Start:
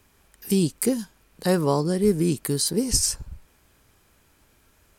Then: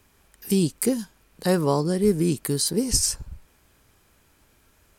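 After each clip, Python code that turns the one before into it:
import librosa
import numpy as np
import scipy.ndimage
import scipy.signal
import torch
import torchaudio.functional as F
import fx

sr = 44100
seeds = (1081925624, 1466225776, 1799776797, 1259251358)

y = x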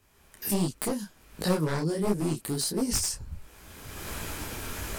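y = np.minimum(x, 2.0 * 10.0 ** (-17.5 / 20.0) - x)
y = fx.recorder_agc(y, sr, target_db=-15.0, rise_db_per_s=30.0, max_gain_db=30)
y = fx.detune_double(y, sr, cents=49)
y = F.gain(torch.from_numpy(y), -2.0).numpy()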